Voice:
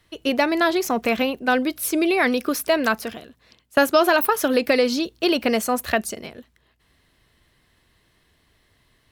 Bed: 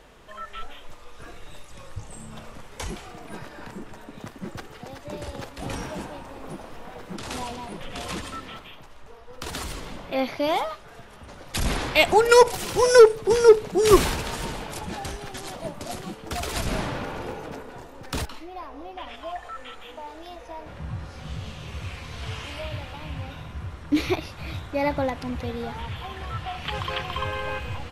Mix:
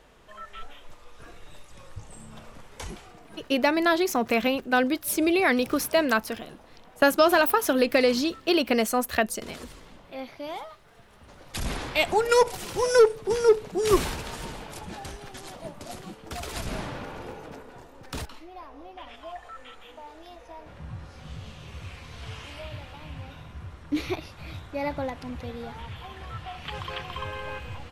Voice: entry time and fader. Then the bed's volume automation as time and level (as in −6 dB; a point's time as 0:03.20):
3.25 s, −2.5 dB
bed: 0:02.86 −4.5 dB
0:03.50 −12 dB
0:10.74 −12 dB
0:11.47 −5.5 dB